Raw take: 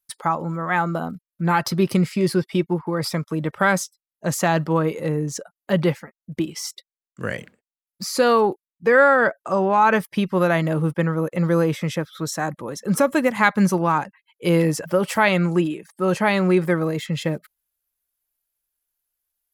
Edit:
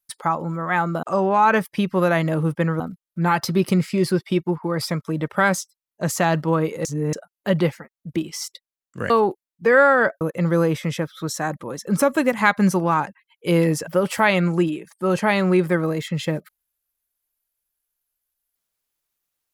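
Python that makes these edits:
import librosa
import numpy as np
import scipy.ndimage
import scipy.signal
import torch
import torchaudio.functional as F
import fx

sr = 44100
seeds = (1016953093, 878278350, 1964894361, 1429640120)

y = fx.edit(x, sr, fx.reverse_span(start_s=5.08, length_s=0.28),
    fx.cut(start_s=7.33, length_s=0.98),
    fx.move(start_s=9.42, length_s=1.77, to_s=1.03), tone=tone)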